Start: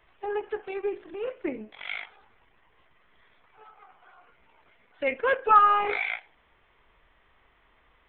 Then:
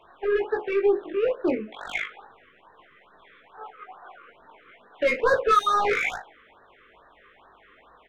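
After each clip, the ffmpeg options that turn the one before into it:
ffmpeg -i in.wav -filter_complex "[0:a]asplit=2[link_01][link_02];[link_02]highpass=frequency=720:poles=1,volume=25dB,asoftclip=type=tanh:threshold=-7.5dB[link_03];[link_01][link_03]amix=inputs=2:normalize=0,lowpass=frequency=1100:poles=1,volume=-6dB,asplit=2[link_04][link_05];[link_05]aecho=0:1:20|60:0.708|0.141[link_06];[link_04][link_06]amix=inputs=2:normalize=0,afftfilt=real='re*(1-between(b*sr/1024,730*pow(2700/730,0.5+0.5*sin(2*PI*2.3*pts/sr))/1.41,730*pow(2700/730,0.5+0.5*sin(2*PI*2.3*pts/sr))*1.41))':imag='im*(1-between(b*sr/1024,730*pow(2700/730,0.5+0.5*sin(2*PI*2.3*pts/sr))/1.41,730*pow(2700/730,0.5+0.5*sin(2*PI*2.3*pts/sr))*1.41))':win_size=1024:overlap=0.75,volume=-3.5dB" out.wav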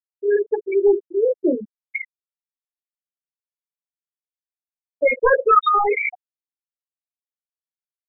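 ffmpeg -i in.wav -af "afftfilt=real='re*gte(hypot(re,im),0.224)':imag='im*gte(hypot(re,im),0.224)':win_size=1024:overlap=0.75,volume=5.5dB" out.wav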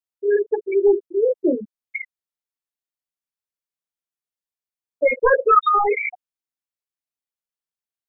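ffmpeg -i in.wav -filter_complex "[0:a]acrossover=split=2700[link_01][link_02];[link_02]acompressor=threshold=-40dB:ratio=4:attack=1:release=60[link_03];[link_01][link_03]amix=inputs=2:normalize=0" out.wav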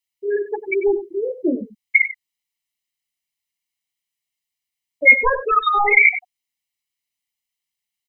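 ffmpeg -i in.wav -af "highshelf=frequency=1800:width_type=q:width=3:gain=6.5,aecho=1:1:1:0.57,aecho=1:1:95:0.211,volume=1dB" out.wav

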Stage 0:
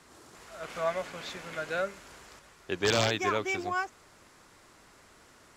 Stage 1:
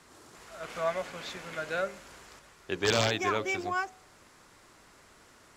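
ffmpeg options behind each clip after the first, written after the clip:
ffmpeg -i in.wav -af "bandreject=frequency=68:width_type=h:width=4,bandreject=frequency=136:width_type=h:width=4,bandreject=frequency=204:width_type=h:width=4,bandreject=frequency=272:width_type=h:width=4,bandreject=frequency=340:width_type=h:width=4,bandreject=frequency=408:width_type=h:width=4,bandreject=frequency=476:width_type=h:width=4,bandreject=frequency=544:width_type=h:width=4,bandreject=frequency=612:width_type=h:width=4,bandreject=frequency=680:width_type=h:width=4,bandreject=frequency=748:width_type=h:width=4,bandreject=frequency=816:width_type=h:width=4" out.wav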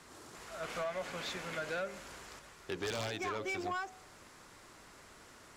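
ffmpeg -i in.wav -af "acompressor=threshold=-32dB:ratio=6,asoftclip=type=tanh:threshold=-32dB,volume=1dB" out.wav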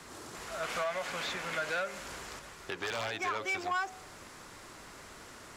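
ffmpeg -i in.wav -filter_complex "[0:a]acrossover=split=650|2800[link_01][link_02][link_03];[link_01]acompressor=threshold=-50dB:ratio=6[link_04];[link_03]alimiter=level_in=15dB:limit=-24dB:level=0:latency=1:release=358,volume=-15dB[link_05];[link_04][link_02][link_05]amix=inputs=3:normalize=0,volume=6.5dB" out.wav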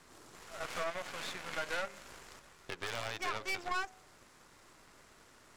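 ffmpeg -i in.wav -af "aeval=exprs='if(lt(val(0),0),0.447*val(0),val(0))':channel_layout=same,aeval=exprs='0.0794*(cos(1*acos(clip(val(0)/0.0794,-1,1)))-cos(1*PI/2))+0.00708*(cos(7*acos(clip(val(0)/0.0794,-1,1)))-cos(7*PI/2))':channel_layout=same" out.wav

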